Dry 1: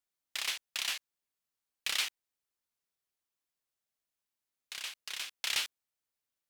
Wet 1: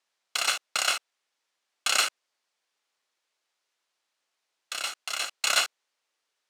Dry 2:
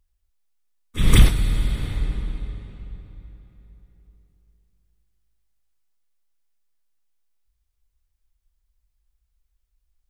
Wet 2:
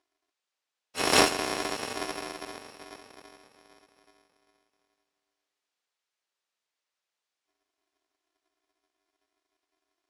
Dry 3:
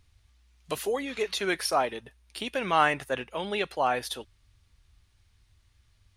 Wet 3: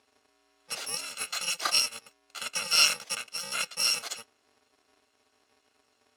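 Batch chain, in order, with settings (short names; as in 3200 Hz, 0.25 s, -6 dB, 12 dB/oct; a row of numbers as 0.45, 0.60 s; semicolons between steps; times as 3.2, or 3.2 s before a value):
FFT order left unsorted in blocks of 128 samples; BPF 440–6000 Hz; match loudness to -27 LUFS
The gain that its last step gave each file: +14.0, +3.5, +5.5 dB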